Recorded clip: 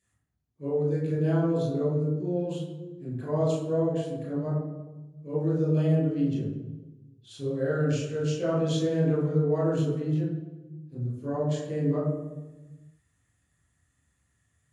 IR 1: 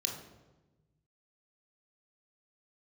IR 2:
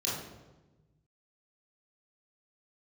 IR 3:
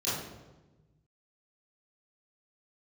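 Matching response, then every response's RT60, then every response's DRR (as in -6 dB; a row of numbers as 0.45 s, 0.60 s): 2; 1.2 s, 1.2 s, 1.2 s; 0.5 dB, -8.0 dB, -13.0 dB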